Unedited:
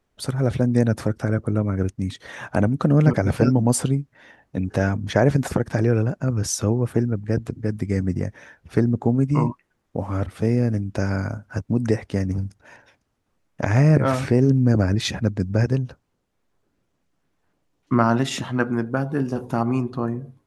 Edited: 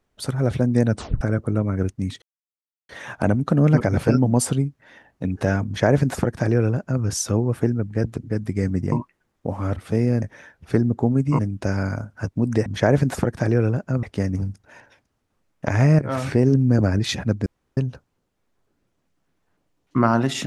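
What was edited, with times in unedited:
0.94 tape stop 0.27 s
2.22 insert silence 0.67 s
4.99–6.36 copy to 11.99
8.25–9.42 move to 10.72
13.95–14.26 fade in, from -13 dB
15.42–15.73 room tone

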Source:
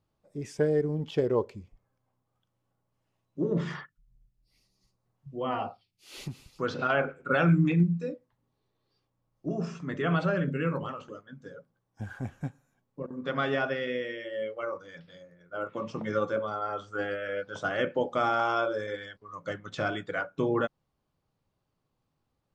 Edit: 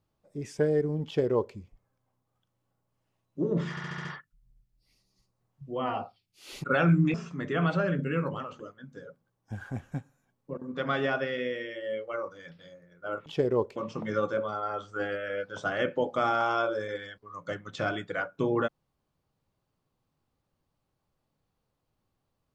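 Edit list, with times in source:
1.05–1.55 copy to 15.75
3.7 stutter 0.07 s, 6 plays
6.29–7.24 cut
7.74–9.63 cut

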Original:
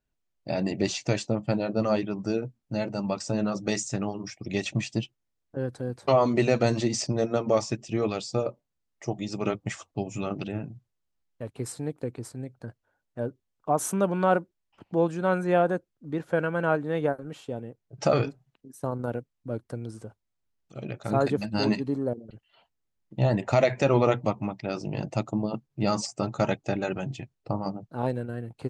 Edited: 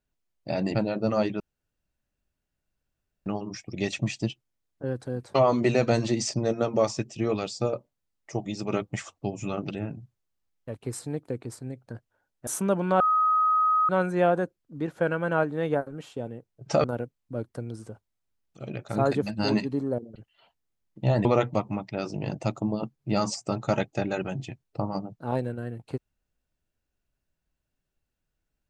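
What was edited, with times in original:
0.75–1.48 cut
2.13–3.99 room tone
13.2–13.79 cut
14.32–15.21 bleep 1260 Hz -19 dBFS
18.16–18.99 cut
23.4–23.96 cut

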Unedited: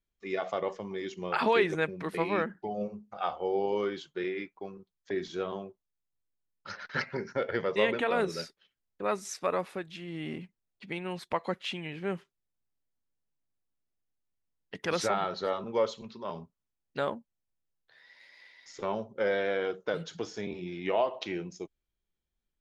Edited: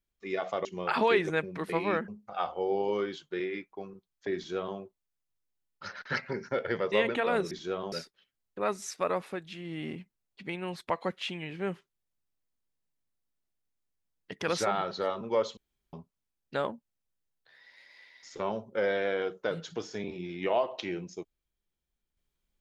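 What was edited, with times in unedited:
0.65–1.1 cut
2.53–2.92 cut
5.2–5.61 copy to 8.35
16–16.36 room tone

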